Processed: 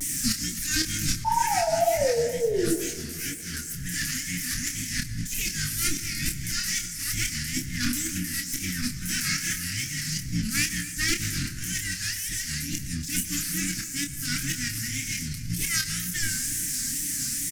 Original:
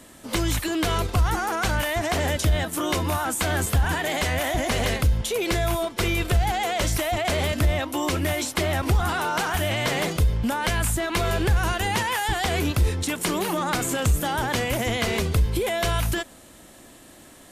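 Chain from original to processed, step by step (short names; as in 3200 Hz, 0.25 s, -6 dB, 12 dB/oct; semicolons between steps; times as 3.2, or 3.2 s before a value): minimum comb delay 7 ms; elliptic band-stop 240–1800 Hz, stop band 50 dB; resonant high shelf 4500 Hz +6.5 dB, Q 3; de-hum 112.3 Hz, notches 38; negative-ratio compressor -38 dBFS, ratio -1; 1.24–2.73 painted sound fall 350–960 Hz -28 dBFS; wow and flutter 150 cents; doubler 28 ms -7 dB; echo 0.26 s -18 dB; reverb RT60 2.1 s, pre-delay 91 ms, DRR 12.5 dB; 1.24–3.54 detuned doubles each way 48 cents; gain +6.5 dB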